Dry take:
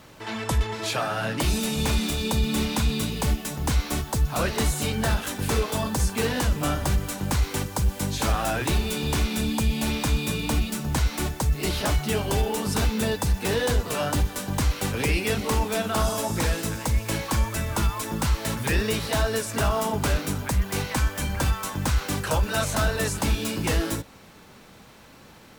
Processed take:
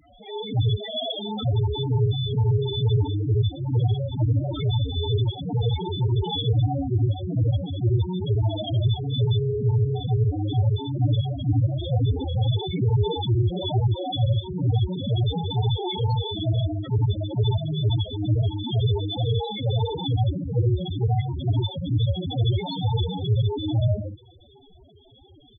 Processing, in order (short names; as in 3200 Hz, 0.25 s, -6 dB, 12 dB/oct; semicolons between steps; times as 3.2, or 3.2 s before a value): sample sorter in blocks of 64 samples; fifteen-band EQ 100 Hz -9 dB, 630 Hz -6 dB, 4000 Hz +4 dB, 10000 Hz -7 dB; loudspeakers at several distances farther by 25 m -1 dB, 46 m -2 dB; formant-preserving pitch shift +11 st; loudest bins only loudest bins 4; gain +4 dB